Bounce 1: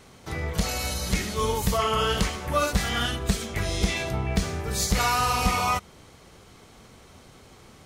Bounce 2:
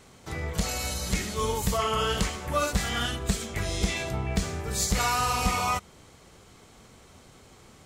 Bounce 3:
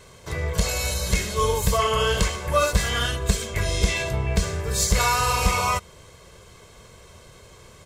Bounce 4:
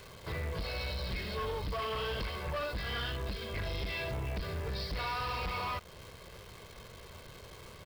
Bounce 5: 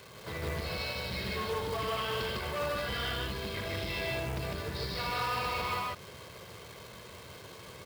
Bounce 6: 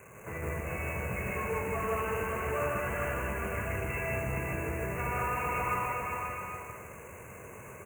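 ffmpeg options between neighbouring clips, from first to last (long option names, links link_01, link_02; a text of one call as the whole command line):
ffmpeg -i in.wav -af "equalizer=frequency=7500:width=4.4:gain=5.5,volume=-2.5dB" out.wav
ffmpeg -i in.wav -af "aecho=1:1:1.9:0.6,volume=3.5dB" out.wav
ffmpeg -i in.wav -af "acompressor=threshold=-29dB:ratio=2,aresample=11025,asoftclip=type=tanh:threshold=-29.5dB,aresample=44100,acrusher=bits=9:dc=4:mix=0:aa=0.000001,volume=-2.5dB" out.wav
ffmpeg -i in.wav -af "highpass=100,aecho=1:1:78.72|154.5:0.355|1,acrusher=bits=4:mode=log:mix=0:aa=0.000001" out.wav
ffmpeg -i in.wav -filter_complex "[0:a]asuperstop=centerf=4200:order=20:qfactor=1.2,asplit=2[link_01][link_02];[link_02]aecho=0:1:400|660|829|938.8|1010:0.631|0.398|0.251|0.158|0.1[link_03];[link_01][link_03]amix=inputs=2:normalize=0" out.wav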